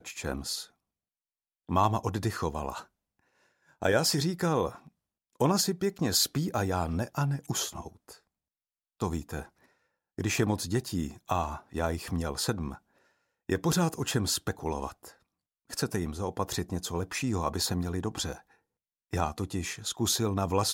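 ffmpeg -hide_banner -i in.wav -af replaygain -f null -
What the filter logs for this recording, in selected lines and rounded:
track_gain = +11.1 dB
track_peak = 0.203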